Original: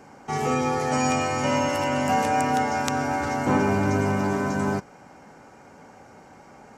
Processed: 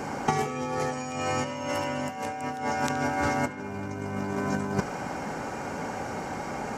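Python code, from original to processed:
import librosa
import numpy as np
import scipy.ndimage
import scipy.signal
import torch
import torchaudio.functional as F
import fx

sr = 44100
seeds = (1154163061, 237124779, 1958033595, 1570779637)

p1 = fx.over_compress(x, sr, threshold_db=-31.0, ratio=-0.5)
p2 = p1 + fx.echo_banded(p1, sr, ms=71, feedback_pct=73, hz=2500.0, wet_db=-13, dry=0)
y = p2 * 10.0 ** (4.5 / 20.0)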